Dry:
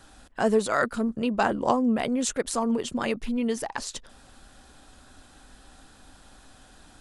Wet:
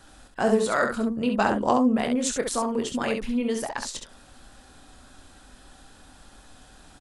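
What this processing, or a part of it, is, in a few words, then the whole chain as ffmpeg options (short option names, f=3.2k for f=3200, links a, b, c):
slapback doubling: -filter_complex "[0:a]asplit=3[a][b][c];[b]adelay=24,volume=-9dB[d];[c]adelay=67,volume=-5.5dB[e];[a][d][e]amix=inputs=3:normalize=0"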